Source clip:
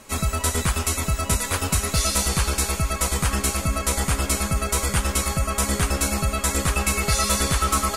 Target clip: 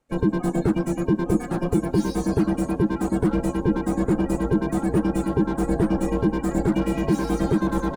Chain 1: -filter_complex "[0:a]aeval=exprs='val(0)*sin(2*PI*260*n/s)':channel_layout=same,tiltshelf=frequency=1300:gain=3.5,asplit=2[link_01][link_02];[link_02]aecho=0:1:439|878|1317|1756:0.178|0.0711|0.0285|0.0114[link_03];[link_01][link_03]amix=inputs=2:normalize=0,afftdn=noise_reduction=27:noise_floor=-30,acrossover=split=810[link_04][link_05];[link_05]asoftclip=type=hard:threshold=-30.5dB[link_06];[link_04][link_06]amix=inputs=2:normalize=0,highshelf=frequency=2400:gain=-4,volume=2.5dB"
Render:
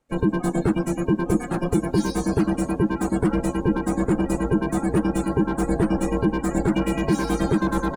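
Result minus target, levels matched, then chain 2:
hard clipping: distortion −5 dB
-filter_complex "[0:a]aeval=exprs='val(0)*sin(2*PI*260*n/s)':channel_layout=same,tiltshelf=frequency=1300:gain=3.5,asplit=2[link_01][link_02];[link_02]aecho=0:1:439|878|1317|1756:0.178|0.0711|0.0285|0.0114[link_03];[link_01][link_03]amix=inputs=2:normalize=0,afftdn=noise_reduction=27:noise_floor=-30,acrossover=split=810[link_04][link_05];[link_05]asoftclip=type=hard:threshold=-37dB[link_06];[link_04][link_06]amix=inputs=2:normalize=0,highshelf=frequency=2400:gain=-4,volume=2.5dB"

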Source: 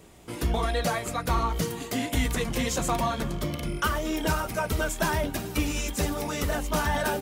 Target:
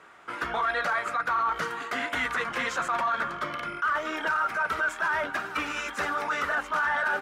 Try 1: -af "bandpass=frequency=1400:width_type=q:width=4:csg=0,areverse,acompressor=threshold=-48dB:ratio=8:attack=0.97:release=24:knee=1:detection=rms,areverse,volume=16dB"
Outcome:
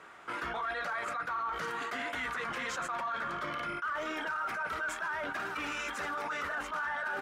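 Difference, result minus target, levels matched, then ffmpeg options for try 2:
downward compressor: peak gain reduction +9 dB
-af "bandpass=frequency=1400:width_type=q:width=4:csg=0,areverse,acompressor=threshold=-38dB:ratio=8:attack=0.97:release=24:knee=1:detection=rms,areverse,volume=16dB"

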